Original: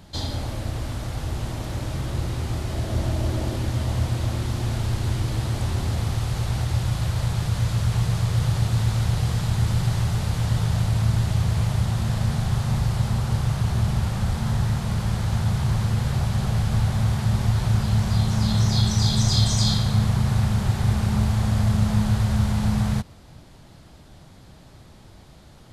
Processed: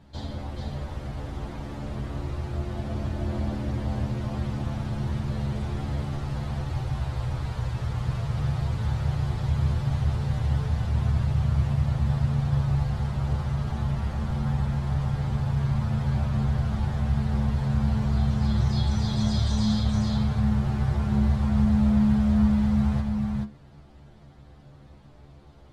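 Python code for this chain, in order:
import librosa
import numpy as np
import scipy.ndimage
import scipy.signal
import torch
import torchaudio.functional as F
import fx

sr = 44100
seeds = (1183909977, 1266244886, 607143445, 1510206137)

y = fx.lowpass(x, sr, hz=1700.0, slope=6)
y = fx.stiff_resonator(y, sr, f0_hz=70.0, decay_s=0.23, stiffness=0.002)
y = y + 10.0 ** (-3.5 / 20.0) * np.pad(y, (int(430 * sr / 1000.0), 0))[:len(y)]
y = y * librosa.db_to_amplitude(2.5)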